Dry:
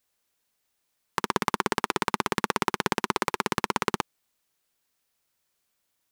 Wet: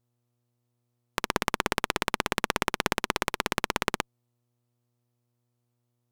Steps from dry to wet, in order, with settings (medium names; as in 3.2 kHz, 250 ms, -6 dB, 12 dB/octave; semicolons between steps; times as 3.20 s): mains buzz 120 Hz, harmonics 11, -66 dBFS -8 dB/octave; Chebyshev shaper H 2 -8 dB, 7 -21 dB, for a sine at -2.5 dBFS; trim -3.5 dB